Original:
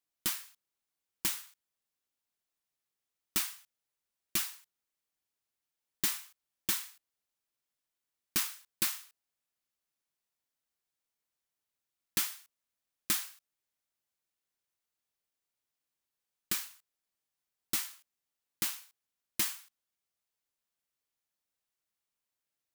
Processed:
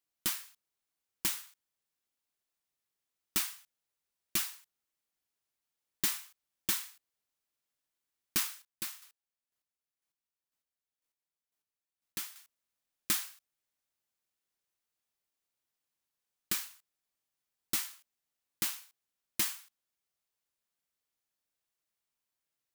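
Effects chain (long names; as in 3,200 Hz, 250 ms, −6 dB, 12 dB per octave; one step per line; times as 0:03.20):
0:08.52–0:12.36: square-wave tremolo 2 Hz, depth 60%, duty 20%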